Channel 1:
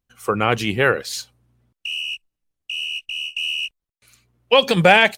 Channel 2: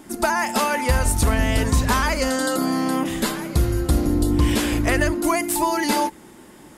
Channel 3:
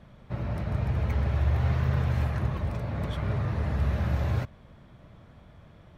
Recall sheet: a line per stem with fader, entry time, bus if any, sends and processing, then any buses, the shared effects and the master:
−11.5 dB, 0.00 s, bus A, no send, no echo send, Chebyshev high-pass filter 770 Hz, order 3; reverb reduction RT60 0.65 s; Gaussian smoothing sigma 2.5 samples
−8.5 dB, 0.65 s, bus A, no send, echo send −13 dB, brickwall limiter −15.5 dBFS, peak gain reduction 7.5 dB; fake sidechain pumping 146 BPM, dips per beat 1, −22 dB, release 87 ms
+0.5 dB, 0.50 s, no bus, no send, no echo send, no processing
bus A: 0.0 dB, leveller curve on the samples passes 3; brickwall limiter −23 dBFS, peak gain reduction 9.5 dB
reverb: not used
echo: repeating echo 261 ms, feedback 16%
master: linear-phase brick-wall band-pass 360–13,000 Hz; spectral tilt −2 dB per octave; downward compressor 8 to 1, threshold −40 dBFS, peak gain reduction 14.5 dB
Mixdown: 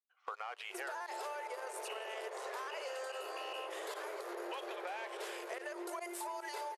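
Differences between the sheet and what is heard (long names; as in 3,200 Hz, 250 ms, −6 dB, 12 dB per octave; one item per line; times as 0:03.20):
stem 1: missing reverb reduction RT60 0.65 s
stem 3: entry 0.50 s → 0.80 s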